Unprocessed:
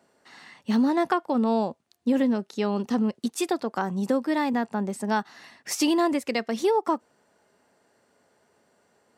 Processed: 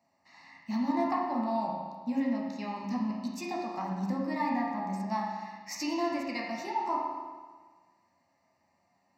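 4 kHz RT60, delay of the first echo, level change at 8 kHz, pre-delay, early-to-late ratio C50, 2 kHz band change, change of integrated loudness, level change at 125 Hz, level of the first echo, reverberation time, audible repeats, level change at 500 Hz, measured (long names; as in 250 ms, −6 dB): 1.4 s, no echo audible, −11.0 dB, 11 ms, 0.0 dB, −7.0 dB, −7.0 dB, −5.0 dB, no echo audible, 1.5 s, no echo audible, −10.5 dB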